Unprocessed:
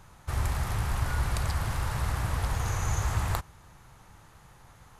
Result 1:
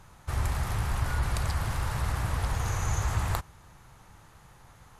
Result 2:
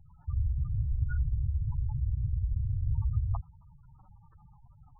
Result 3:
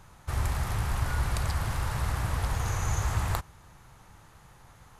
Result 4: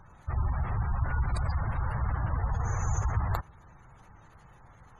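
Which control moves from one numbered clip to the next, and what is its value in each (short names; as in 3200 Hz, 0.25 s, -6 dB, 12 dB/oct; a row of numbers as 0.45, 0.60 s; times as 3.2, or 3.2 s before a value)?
spectral gate, under each frame's peak: -45, -10, -60, -25 dB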